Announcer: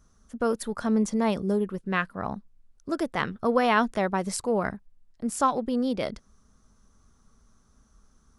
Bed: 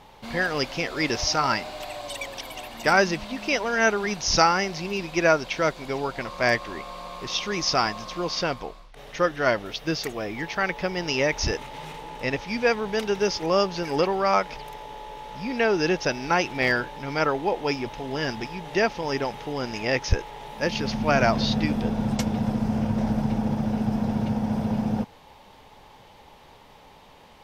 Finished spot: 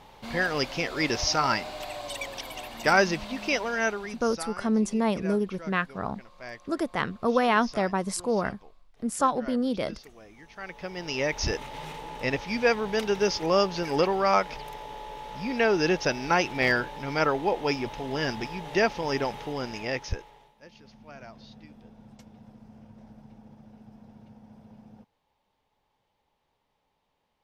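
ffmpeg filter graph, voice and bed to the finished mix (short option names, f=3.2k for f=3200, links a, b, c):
-filter_complex "[0:a]adelay=3800,volume=-0.5dB[a];[1:a]volume=17dB,afade=t=out:st=3.46:d=0.85:silence=0.125893,afade=t=in:st=10.51:d=1.18:silence=0.11885,afade=t=out:st=19.32:d=1.22:silence=0.0595662[b];[a][b]amix=inputs=2:normalize=0"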